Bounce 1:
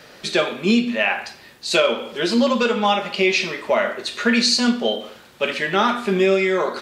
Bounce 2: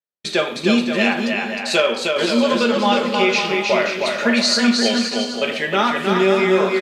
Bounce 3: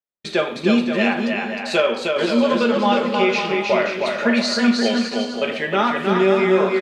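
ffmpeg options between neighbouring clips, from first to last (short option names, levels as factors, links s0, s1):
-filter_complex "[0:a]agate=range=0.00141:threshold=0.0251:ratio=16:detection=peak,asplit=2[s0][s1];[s1]aecho=0:1:310|527|678.9|785.2|859.7:0.631|0.398|0.251|0.158|0.1[s2];[s0][s2]amix=inputs=2:normalize=0"
-af "highshelf=f=3600:g=-10"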